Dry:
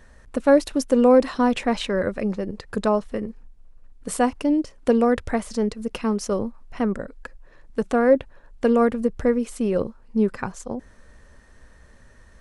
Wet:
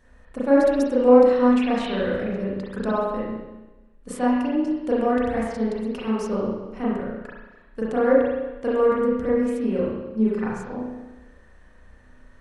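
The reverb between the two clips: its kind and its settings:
spring reverb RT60 1.1 s, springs 32/36 ms, chirp 35 ms, DRR −8 dB
level −9.5 dB

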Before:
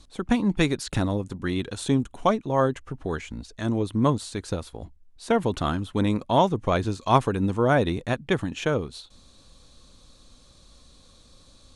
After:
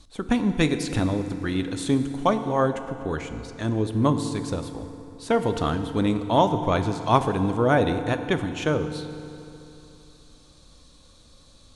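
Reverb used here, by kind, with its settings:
feedback delay network reverb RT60 3 s, high-frequency decay 0.7×, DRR 8 dB

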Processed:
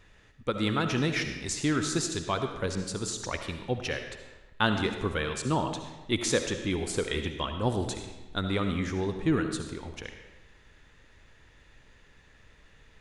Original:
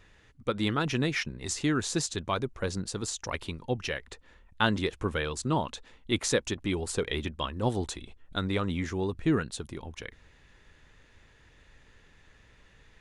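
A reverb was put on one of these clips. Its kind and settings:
comb and all-pass reverb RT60 1.1 s, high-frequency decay 0.85×, pre-delay 30 ms, DRR 6 dB

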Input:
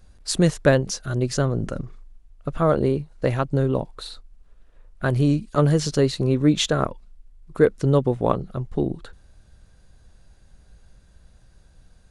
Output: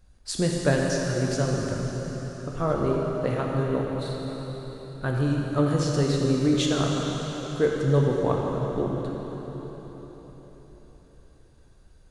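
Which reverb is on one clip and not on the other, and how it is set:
dense smooth reverb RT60 4.6 s, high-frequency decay 0.95×, DRR −2 dB
level −7 dB

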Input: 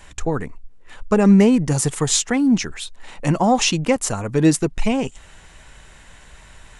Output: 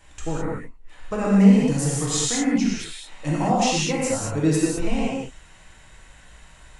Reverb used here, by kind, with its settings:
reverb whose tail is shaped and stops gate 240 ms flat, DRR −6 dB
level −10.5 dB

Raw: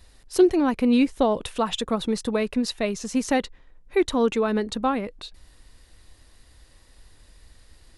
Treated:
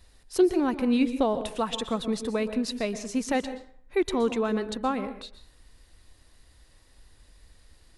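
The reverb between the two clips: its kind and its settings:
dense smooth reverb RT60 0.51 s, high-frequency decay 0.65×, pre-delay 110 ms, DRR 11.5 dB
level −4 dB

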